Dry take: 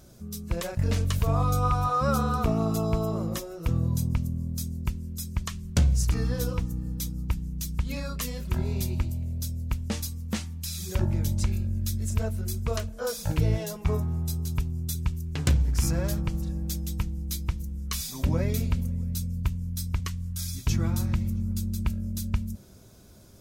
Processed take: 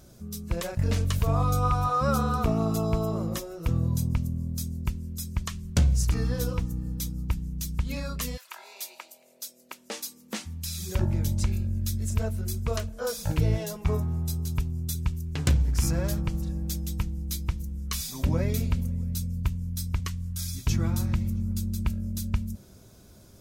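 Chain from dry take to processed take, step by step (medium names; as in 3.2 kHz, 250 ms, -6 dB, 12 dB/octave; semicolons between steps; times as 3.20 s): 8.36–10.45 s: high-pass 910 Hz -> 230 Hz 24 dB/octave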